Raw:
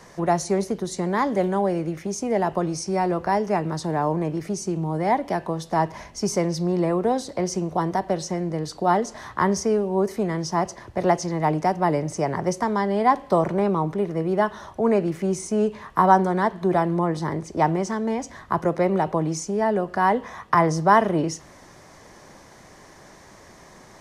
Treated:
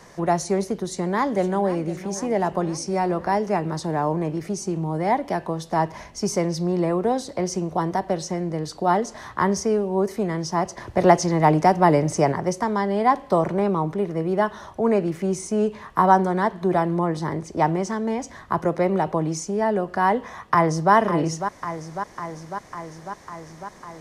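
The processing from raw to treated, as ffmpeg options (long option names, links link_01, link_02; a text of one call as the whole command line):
ffmpeg -i in.wav -filter_complex "[0:a]asplit=2[link_01][link_02];[link_02]afade=type=in:start_time=0.84:duration=0.01,afade=type=out:start_time=1.84:duration=0.01,aecho=0:1:510|1020|1530|2040|2550|3060|3570:0.177828|0.115588|0.0751323|0.048836|0.0317434|0.0206332|0.0134116[link_03];[link_01][link_03]amix=inputs=2:normalize=0,asplit=2[link_04][link_05];[link_05]afade=type=in:start_time=20.5:duration=0.01,afade=type=out:start_time=20.93:duration=0.01,aecho=0:1:550|1100|1650|2200|2750|3300|3850|4400|4950|5500|6050|6600:0.334965|0.251224|0.188418|0.141314|0.105985|0.0794889|0.0596167|0.0447125|0.0335344|0.0251508|0.0188631|0.0141473[link_06];[link_04][link_06]amix=inputs=2:normalize=0,asplit=3[link_07][link_08][link_09];[link_07]atrim=end=10.772[link_10];[link_08]atrim=start=10.768:end=12.322,asetpts=PTS-STARTPTS,volume=5dB[link_11];[link_09]atrim=start=12.318[link_12];[link_10][link_11]acrossfade=duration=0.004:curve1=hsin:curve2=hsin[link_13];[link_13][link_12]acrossfade=duration=0.004:curve1=hsin:curve2=hsin" out.wav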